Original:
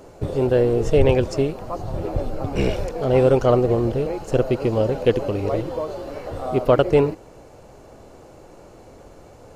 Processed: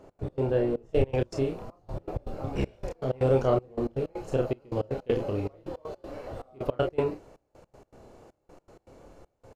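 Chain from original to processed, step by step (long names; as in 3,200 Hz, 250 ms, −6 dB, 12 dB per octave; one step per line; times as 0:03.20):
ambience of single reflections 30 ms −4.5 dB, 47 ms −10 dB
gate pattern "x.x.xxxx.." 159 BPM −24 dB
high-shelf EQ 4,200 Hz −10.5 dB, from 0:00.89 −4 dB
level −8.5 dB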